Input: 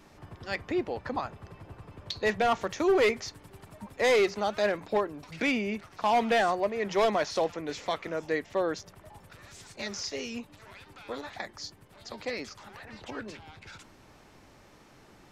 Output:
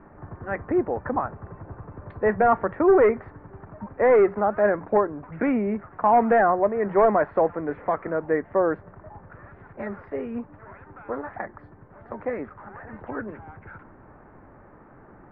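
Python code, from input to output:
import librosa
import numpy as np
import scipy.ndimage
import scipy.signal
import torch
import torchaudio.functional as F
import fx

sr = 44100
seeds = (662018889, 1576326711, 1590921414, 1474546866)

y = scipy.signal.sosfilt(scipy.signal.butter(6, 1700.0, 'lowpass', fs=sr, output='sos'), x)
y = y * librosa.db_to_amplitude(7.0)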